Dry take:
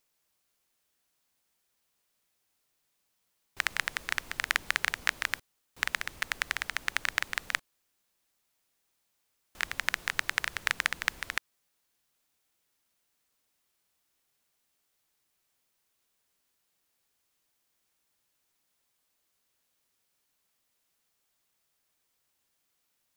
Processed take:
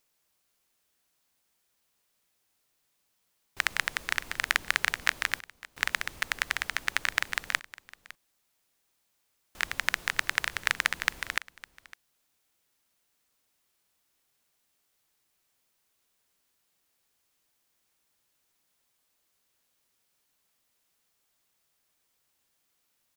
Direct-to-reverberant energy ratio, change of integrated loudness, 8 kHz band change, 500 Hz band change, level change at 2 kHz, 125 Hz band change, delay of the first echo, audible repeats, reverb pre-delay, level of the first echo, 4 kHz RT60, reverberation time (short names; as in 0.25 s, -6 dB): none, +2.0 dB, +2.0 dB, +2.0 dB, +2.0 dB, +2.0 dB, 0.557 s, 1, none, -19.5 dB, none, none